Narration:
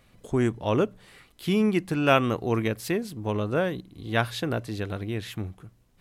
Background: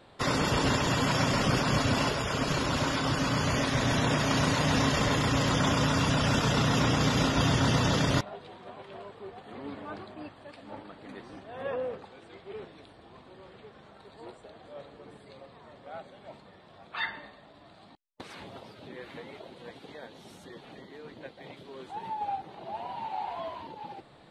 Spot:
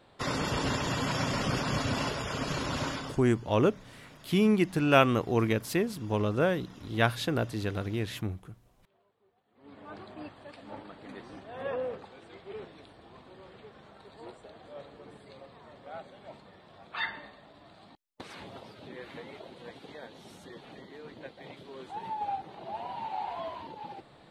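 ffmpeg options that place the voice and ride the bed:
-filter_complex "[0:a]adelay=2850,volume=0.891[s0];[1:a]volume=13.3,afade=t=out:st=2.86:d=0.35:silence=0.0707946,afade=t=in:st=9.55:d=0.63:silence=0.0473151[s1];[s0][s1]amix=inputs=2:normalize=0"

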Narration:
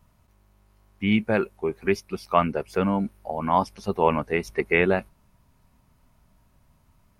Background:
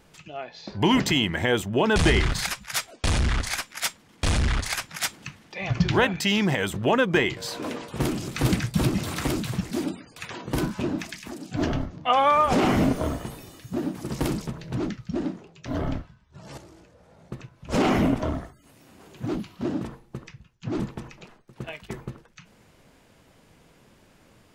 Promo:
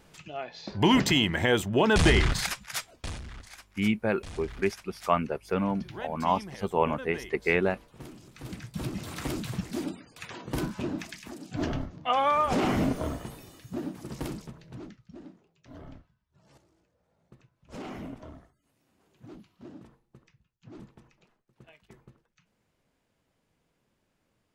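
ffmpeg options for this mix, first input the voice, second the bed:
-filter_complex "[0:a]adelay=2750,volume=0.596[s0];[1:a]volume=4.73,afade=t=out:st=2.3:d=0.92:silence=0.11885,afade=t=in:st=8.45:d=1.06:silence=0.188365,afade=t=out:st=13.57:d=1.45:silence=0.211349[s1];[s0][s1]amix=inputs=2:normalize=0"

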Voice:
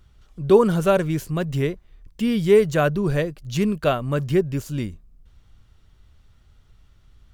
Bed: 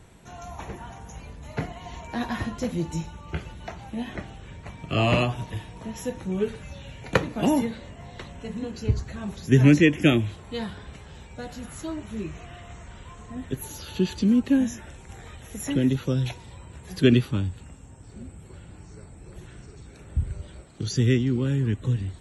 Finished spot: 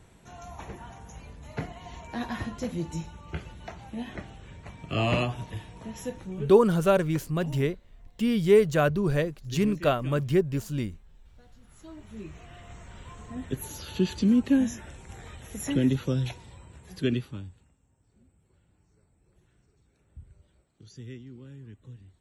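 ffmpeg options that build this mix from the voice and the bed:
-filter_complex "[0:a]adelay=6000,volume=0.668[s0];[1:a]volume=7.5,afade=t=out:st=6.08:d=0.52:silence=0.112202,afade=t=in:st=11.61:d=1.5:silence=0.0841395,afade=t=out:st=15.92:d=1.81:silence=0.1[s1];[s0][s1]amix=inputs=2:normalize=0"

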